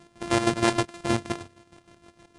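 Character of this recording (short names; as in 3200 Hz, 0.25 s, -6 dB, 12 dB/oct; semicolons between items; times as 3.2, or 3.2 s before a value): a buzz of ramps at a fixed pitch in blocks of 128 samples; chopped level 6.4 Hz, depth 65%, duty 45%; AAC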